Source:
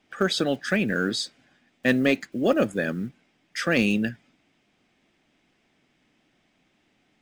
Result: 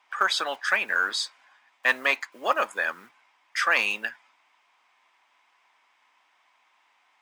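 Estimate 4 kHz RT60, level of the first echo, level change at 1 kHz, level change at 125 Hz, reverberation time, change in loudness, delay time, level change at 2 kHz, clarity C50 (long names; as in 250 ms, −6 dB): no reverb audible, no echo audible, +7.0 dB, below −25 dB, no reverb audible, −0.5 dB, no echo audible, +4.5 dB, no reverb audible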